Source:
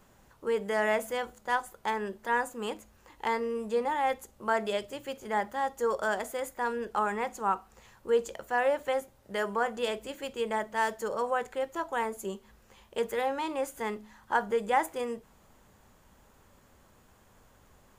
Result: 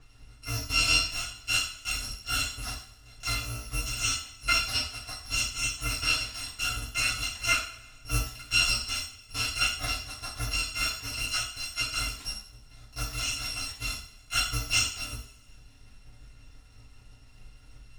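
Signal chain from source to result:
samples in bit-reversed order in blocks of 256 samples
low-shelf EQ 170 Hz +7.5 dB
transient designer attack +2 dB, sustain −8 dB
high-frequency loss of the air 87 metres
coupled-rooms reverb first 0.48 s, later 1.6 s, from −18 dB, DRR −7 dB

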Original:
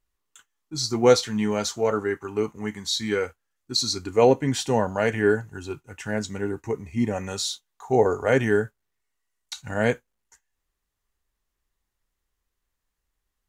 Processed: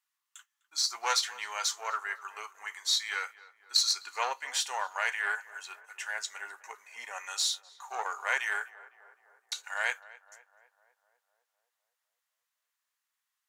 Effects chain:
one-sided soft clipper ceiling −14 dBFS
high-pass filter 980 Hz 24 dB per octave
tape delay 253 ms, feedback 68%, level −17.5 dB, low-pass 1,600 Hz

